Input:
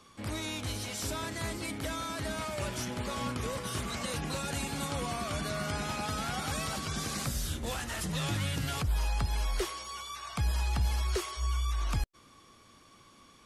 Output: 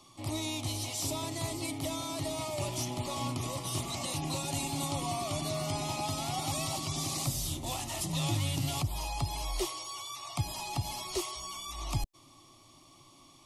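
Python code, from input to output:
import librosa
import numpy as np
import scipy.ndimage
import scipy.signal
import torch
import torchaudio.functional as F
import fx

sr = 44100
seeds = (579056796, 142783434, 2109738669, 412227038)

y = fx.fixed_phaser(x, sr, hz=310.0, stages=8)
y = y * librosa.db_to_amplitude(3.5)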